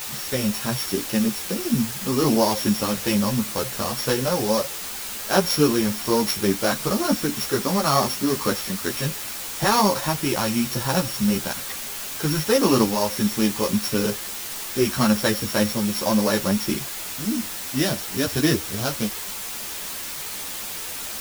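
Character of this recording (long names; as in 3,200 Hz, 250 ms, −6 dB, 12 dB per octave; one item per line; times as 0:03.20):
a buzz of ramps at a fixed pitch in blocks of 8 samples
tremolo saw up 0.7 Hz, depth 40%
a quantiser's noise floor 6 bits, dither triangular
a shimmering, thickened sound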